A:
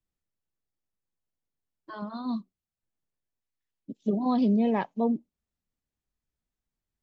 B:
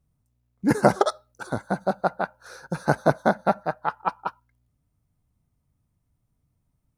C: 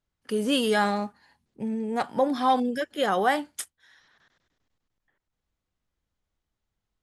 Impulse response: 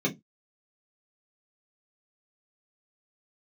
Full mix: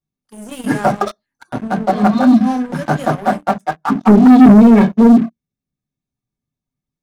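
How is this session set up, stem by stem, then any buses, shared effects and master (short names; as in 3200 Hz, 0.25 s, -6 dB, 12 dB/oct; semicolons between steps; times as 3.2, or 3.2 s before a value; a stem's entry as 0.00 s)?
-3.0 dB, 0.00 s, send -3.5 dB, dry
-13.5 dB, 0.00 s, send -8.5 dB, reverb removal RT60 1.4 s; band shelf 1100 Hz +9 dB; vocal rider within 3 dB 0.5 s
0.88 s -15 dB -> 1.54 s -2.5 dB -> 2.57 s -2.5 dB -> 3.27 s -10.5 dB, 0.00 s, send -19.5 dB, envelope phaser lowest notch 300 Hz, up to 4000 Hz, full sweep at -28.5 dBFS; auto duck -16 dB, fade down 0.90 s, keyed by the first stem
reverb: on, RT60 0.15 s, pre-delay 3 ms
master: high shelf 2900 Hz +8 dB; sample leveller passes 3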